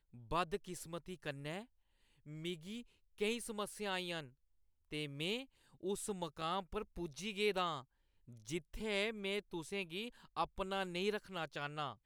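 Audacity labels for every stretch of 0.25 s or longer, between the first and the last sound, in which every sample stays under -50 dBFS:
1.640000	2.260000	silence
2.820000	3.180000	silence
4.280000	4.910000	silence
5.440000	5.830000	silence
7.810000	8.280000	silence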